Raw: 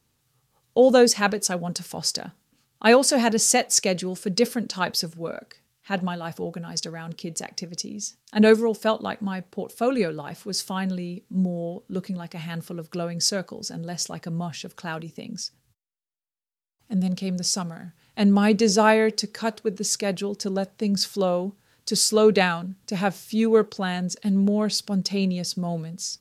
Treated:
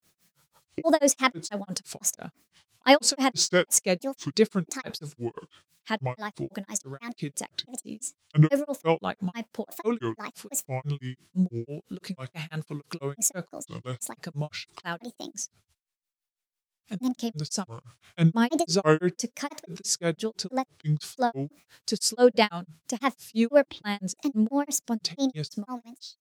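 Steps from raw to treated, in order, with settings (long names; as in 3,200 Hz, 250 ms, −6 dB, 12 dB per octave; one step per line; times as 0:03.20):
fade-out on the ending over 0.85 s
granular cloud 161 ms, grains 6 per second, spray 14 ms, pitch spread up and down by 7 semitones
one half of a high-frequency compander encoder only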